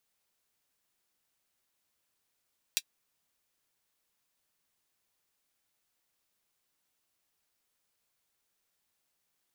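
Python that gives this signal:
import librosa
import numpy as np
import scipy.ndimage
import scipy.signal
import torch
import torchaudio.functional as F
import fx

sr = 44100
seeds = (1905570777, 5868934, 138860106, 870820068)

y = fx.drum_hat(sr, length_s=0.24, from_hz=3100.0, decay_s=0.06)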